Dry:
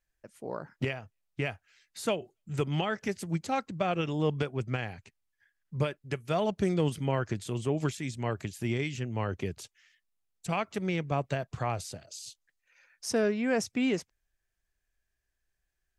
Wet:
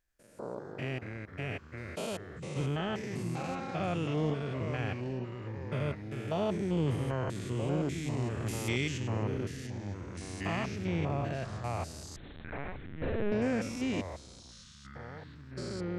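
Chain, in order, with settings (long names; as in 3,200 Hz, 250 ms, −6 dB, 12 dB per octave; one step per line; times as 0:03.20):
spectrum averaged block by block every 200 ms
0:08.46–0:08.98: high-shelf EQ 2,500 Hz +11 dB
in parallel at −11 dB: soft clipping −33 dBFS, distortion −9 dB
on the sum: delay with pitch and tempo change per echo 83 ms, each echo −3 semitones, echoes 3, each echo −6 dB
0:12.16–0:13.32: linear-prediction vocoder at 8 kHz pitch kept
level −1.5 dB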